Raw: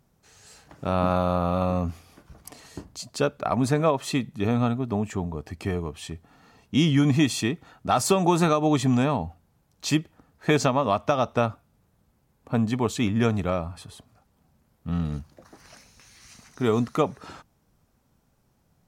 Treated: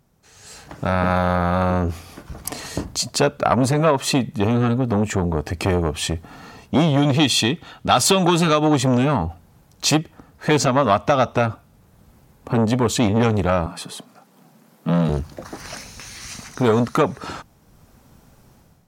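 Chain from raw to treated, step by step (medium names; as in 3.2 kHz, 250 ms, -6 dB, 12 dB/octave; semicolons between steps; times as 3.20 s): 7.02–8.65 s: peaking EQ 3.3 kHz +9 dB 0.8 oct; level rider gain up to 13 dB; 13.66–15.09 s: steep high-pass 160 Hz 36 dB/octave; compression 1.5:1, threshold -18 dBFS, peak gain reduction 4 dB; transformer saturation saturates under 770 Hz; trim +3 dB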